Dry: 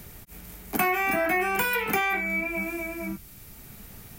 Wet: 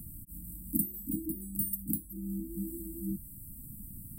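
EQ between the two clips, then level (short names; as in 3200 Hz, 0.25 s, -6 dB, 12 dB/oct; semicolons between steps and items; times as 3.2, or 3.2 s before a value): brick-wall FIR band-stop 330–7600 Hz; 0.0 dB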